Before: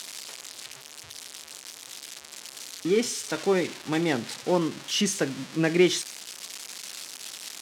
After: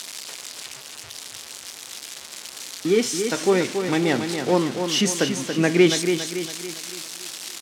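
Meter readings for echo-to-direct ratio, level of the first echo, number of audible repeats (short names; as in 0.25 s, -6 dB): -6.0 dB, -7.0 dB, 5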